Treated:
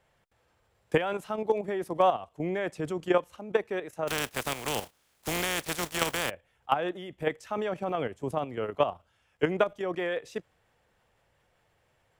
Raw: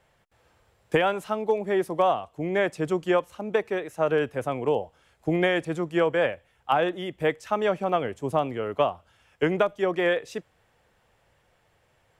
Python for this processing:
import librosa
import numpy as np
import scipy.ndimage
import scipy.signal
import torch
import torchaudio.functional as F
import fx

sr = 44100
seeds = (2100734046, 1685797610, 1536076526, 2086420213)

y = fx.spec_flatten(x, sr, power=0.33, at=(4.07, 6.29), fade=0.02)
y = fx.level_steps(y, sr, step_db=10)